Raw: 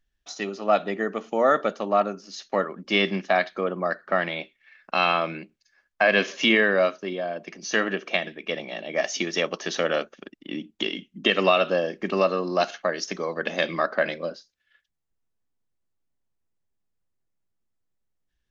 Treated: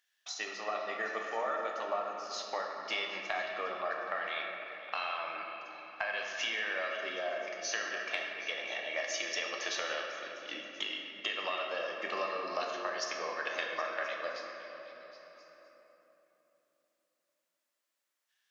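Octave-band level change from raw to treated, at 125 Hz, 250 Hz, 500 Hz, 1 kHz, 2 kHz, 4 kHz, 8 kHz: under -25 dB, -21.5 dB, -14.0 dB, -10.0 dB, -9.0 dB, -8.5 dB, n/a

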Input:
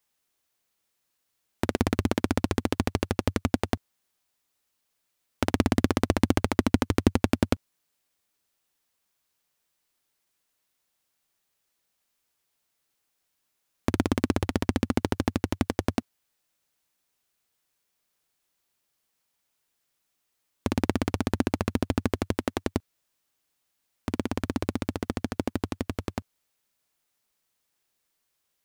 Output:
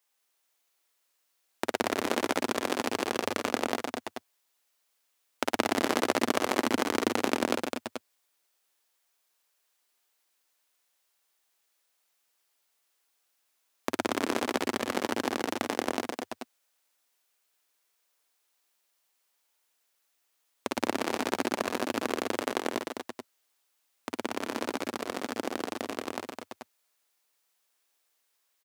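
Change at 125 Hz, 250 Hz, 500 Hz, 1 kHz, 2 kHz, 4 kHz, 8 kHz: -19.0, -6.0, 0.0, +2.5, +2.5, +2.5, +2.5 dB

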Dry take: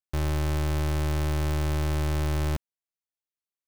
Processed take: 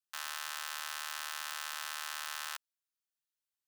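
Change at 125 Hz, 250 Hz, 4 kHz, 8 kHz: under -40 dB, under -40 dB, +0.5 dB, +1.0 dB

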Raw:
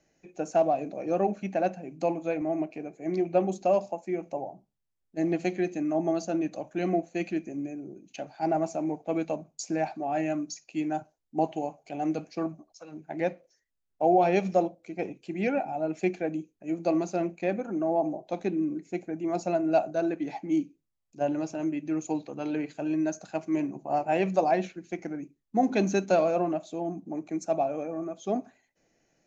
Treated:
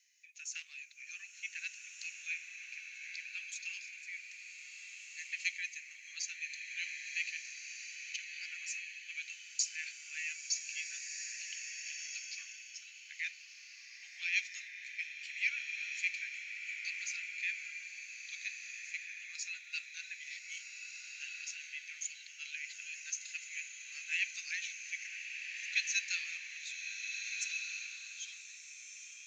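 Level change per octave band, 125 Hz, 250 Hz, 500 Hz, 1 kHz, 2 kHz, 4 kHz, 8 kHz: under -40 dB, under -40 dB, under -40 dB, under -40 dB, +4.5 dB, +7.0 dB, n/a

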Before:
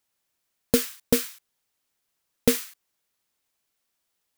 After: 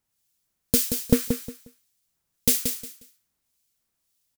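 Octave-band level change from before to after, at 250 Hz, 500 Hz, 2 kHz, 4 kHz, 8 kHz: +1.5, -3.5, -3.5, +1.5, +4.5 dB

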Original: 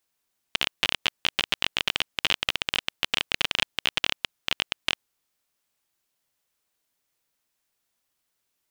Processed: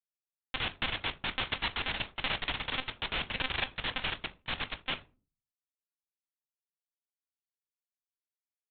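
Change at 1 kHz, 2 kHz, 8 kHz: -2.0 dB, -5.5 dB, under -40 dB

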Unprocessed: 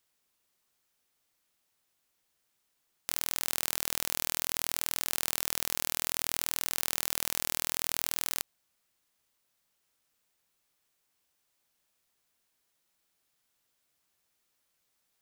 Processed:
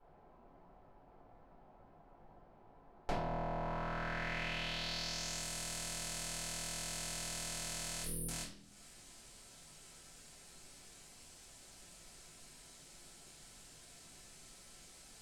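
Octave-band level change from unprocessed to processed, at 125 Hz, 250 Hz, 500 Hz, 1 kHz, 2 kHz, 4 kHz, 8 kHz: +6.0, +2.5, +1.5, -0.5, -4.0, -6.0, -8.0 dB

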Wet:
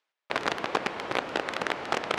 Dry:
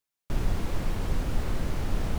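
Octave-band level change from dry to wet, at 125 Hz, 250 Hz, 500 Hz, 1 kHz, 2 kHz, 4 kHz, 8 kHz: -17.0, -2.5, +7.0, +10.5, +12.0, +9.5, +0.5 dB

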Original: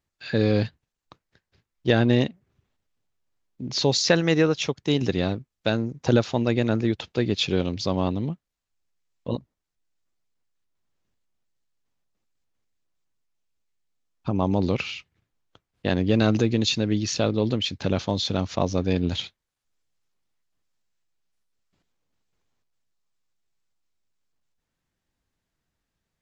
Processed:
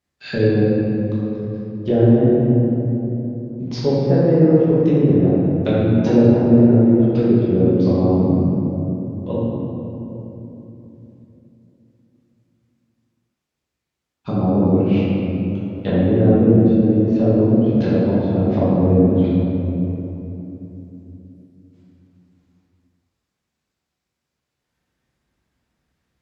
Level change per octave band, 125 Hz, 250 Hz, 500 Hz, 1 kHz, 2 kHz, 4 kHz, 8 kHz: +9.5 dB, +11.0 dB, +8.5 dB, +2.5 dB, -5.0 dB, under -10 dB, n/a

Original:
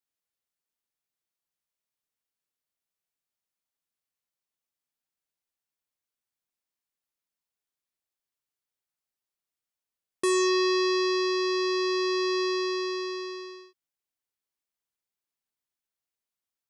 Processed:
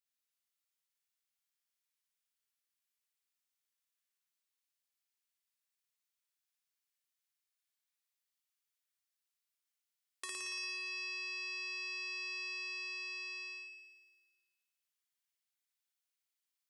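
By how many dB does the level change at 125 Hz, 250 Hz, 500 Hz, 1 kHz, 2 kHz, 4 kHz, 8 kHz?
n/a, under -30 dB, -35.0 dB, -23.0 dB, -6.0 dB, -12.5 dB, -11.5 dB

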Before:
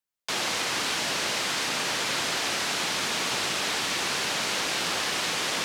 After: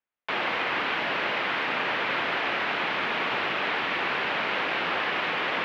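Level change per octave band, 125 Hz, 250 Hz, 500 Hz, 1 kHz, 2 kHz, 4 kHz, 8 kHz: -2.5 dB, +0.5 dB, +2.5 dB, +3.5 dB, +3.0 dB, -5.5 dB, under -25 dB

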